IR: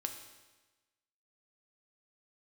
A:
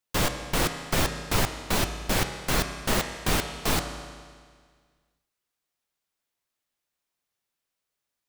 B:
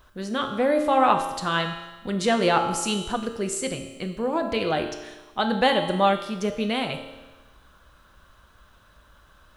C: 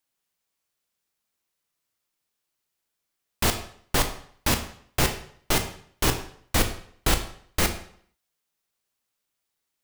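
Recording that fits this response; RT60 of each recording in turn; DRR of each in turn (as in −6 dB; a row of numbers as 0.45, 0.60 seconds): B; 1.8, 1.2, 0.60 seconds; 6.0, 4.5, 6.0 decibels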